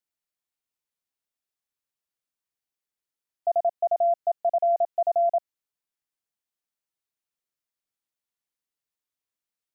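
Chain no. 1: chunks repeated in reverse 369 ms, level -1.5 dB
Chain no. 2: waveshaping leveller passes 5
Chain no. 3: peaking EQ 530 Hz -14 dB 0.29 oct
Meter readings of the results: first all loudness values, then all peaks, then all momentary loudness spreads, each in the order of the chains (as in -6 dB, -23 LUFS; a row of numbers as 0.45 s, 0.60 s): -23.5 LUFS, -22.0 LUFS, -27.5 LUFS; -12.5 dBFS, -17.5 dBFS, -20.0 dBFS; 7 LU, 4 LU, 4 LU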